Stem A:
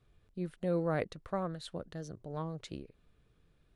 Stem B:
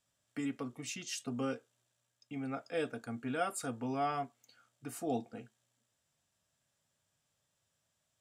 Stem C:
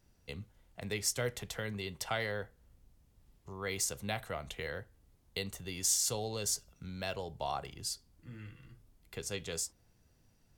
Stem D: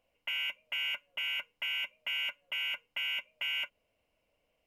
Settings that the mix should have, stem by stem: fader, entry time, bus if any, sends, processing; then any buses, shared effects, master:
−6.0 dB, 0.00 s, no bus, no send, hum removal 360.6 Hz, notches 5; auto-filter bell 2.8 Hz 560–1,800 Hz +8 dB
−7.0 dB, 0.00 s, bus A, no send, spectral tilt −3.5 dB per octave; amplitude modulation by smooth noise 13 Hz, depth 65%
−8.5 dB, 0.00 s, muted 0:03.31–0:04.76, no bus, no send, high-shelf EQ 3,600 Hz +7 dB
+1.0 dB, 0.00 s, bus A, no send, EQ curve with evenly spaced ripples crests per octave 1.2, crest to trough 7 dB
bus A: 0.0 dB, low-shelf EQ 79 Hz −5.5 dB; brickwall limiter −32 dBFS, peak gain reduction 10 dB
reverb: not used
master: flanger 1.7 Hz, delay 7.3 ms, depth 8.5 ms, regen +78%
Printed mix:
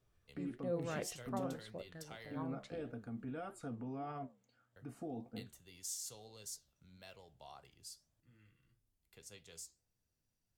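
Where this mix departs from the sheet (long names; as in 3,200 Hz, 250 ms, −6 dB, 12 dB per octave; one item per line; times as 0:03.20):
stem B −7.0 dB → +1.5 dB
stem C −8.5 dB → −14.5 dB
stem D: muted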